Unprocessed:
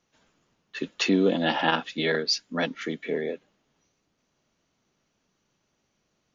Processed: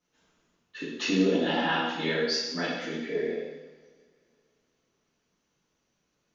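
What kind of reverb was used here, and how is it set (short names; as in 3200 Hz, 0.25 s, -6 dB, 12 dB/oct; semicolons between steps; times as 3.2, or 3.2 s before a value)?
two-slope reverb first 1 s, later 2.7 s, from -20 dB, DRR -8.5 dB; gain -11 dB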